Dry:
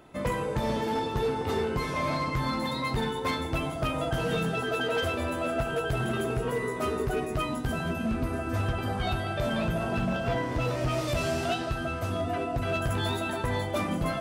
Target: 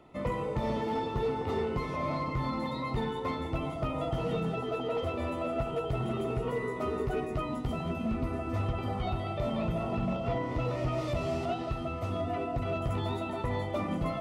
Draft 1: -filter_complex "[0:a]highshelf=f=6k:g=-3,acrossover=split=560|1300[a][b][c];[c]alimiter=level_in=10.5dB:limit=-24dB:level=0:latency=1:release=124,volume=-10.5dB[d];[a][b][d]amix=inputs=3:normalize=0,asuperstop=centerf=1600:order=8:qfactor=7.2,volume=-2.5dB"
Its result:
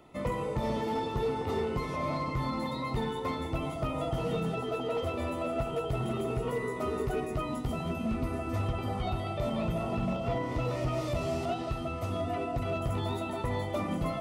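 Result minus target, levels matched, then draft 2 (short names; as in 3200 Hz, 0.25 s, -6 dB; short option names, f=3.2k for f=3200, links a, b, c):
8000 Hz band +5.5 dB
-filter_complex "[0:a]highshelf=f=6k:g=-14,acrossover=split=560|1300[a][b][c];[c]alimiter=level_in=10.5dB:limit=-24dB:level=0:latency=1:release=124,volume=-10.5dB[d];[a][b][d]amix=inputs=3:normalize=0,asuperstop=centerf=1600:order=8:qfactor=7.2,volume=-2.5dB"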